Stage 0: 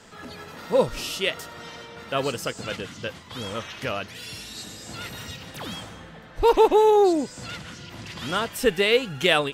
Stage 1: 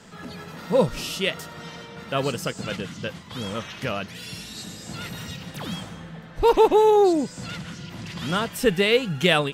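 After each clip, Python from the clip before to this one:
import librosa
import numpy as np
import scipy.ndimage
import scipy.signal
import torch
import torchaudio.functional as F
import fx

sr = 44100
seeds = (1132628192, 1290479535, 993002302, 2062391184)

y = fx.peak_eq(x, sr, hz=170.0, db=9.0, octaves=0.71)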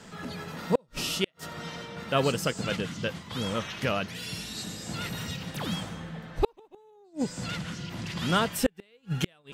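y = fx.gate_flip(x, sr, shuts_db=-11.0, range_db=-40)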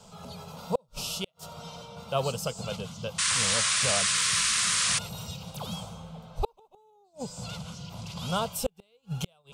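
y = fx.fixed_phaser(x, sr, hz=750.0, stages=4)
y = fx.spec_paint(y, sr, seeds[0], shape='noise', start_s=3.18, length_s=1.81, low_hz=970.0, high_hz=9900.0, level_db=-26.0)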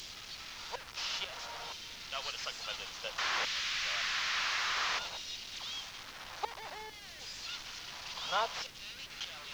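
y = fx.delta_mod(x, sr, bps=32000, step_db=-35.0)
y = fx.filter_lfo_highpass(y, sr, shape='saw_down', hz=0.58, low_hz=710.0, high_hz=2700.0, q=0.82)
y = fx.dmg_noise_colour(y, sr, seeds[1], colour='pink', level_db=-57.0)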